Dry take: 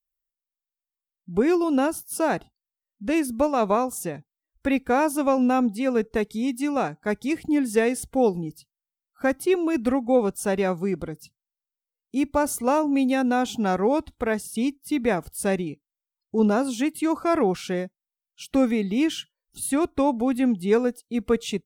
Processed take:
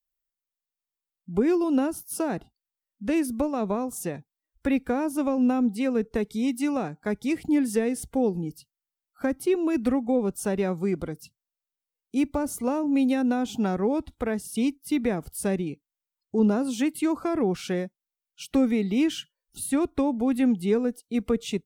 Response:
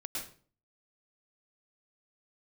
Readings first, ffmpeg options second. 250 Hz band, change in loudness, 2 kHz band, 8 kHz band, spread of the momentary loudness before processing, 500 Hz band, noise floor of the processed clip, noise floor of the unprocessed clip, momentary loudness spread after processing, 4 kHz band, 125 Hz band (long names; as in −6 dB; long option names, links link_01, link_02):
−0.5 dB, −2.0 dB, −6.0 dB, −3.0 dB, 9 LU, −4.0 dB, below −85 dBFS, below −85 dBFS, 8 LU, −3.0 dB, 0.0 dB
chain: -filter_complex "[0:a]acrossover=split=400[link_01][link_02];[link_02]acompressor=threshold=-30dB:ratio=6[link_03];[link_01][link_03]amix=inputs=2:normalize=0"